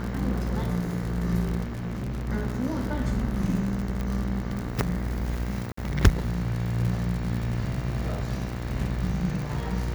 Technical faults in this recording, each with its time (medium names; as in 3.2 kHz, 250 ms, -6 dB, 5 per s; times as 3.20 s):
buzz 60 Hz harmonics 37 -32 dBFS
crackle 87 per s -30 dBFS
1.63–2.29 s: clipped -28 dBFS
4.01 s: pop -19 dBFS
5.72–5.77 s: dropout 54 ms